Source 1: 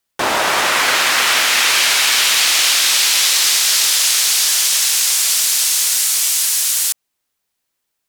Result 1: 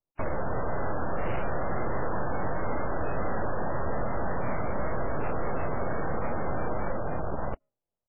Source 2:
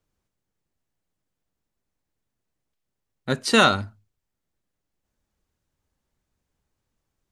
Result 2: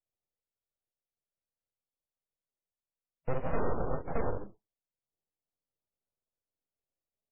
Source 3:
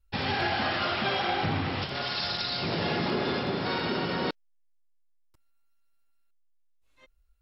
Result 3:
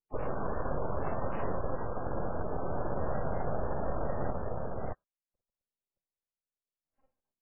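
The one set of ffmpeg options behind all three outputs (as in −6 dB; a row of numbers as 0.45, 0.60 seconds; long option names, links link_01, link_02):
-filter_complex "[0:a]asplit=2[link_01][link_02];[link_02]alimiter=limit=-8dB:level=0:latency=1:release=71,volume=1dB[link_03];[link_01][link_03]amix=inputs=2:normalize=0,acrusher=samples=28:mix=1:aa=0.000001,bandpass=frequency=280:width_type=q:width=2.1:csg=0,aecho=1:1:47|55|141|145|258|621:0.398|0.422|0.126|0.422|0.316|0.668,asoftclip=type=tanh:threshold=-12.5dB,acompressor=threshold=-27dB:ratio=2.5,afftdn=noise_reduction=18:noise_floor=-46,aeval=exprs='abs(val(0))':channel_layout=same" -ar 8000 -c:a libmp3lame -b:a 8k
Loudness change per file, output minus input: −20.5, −16.0, −7.5 LU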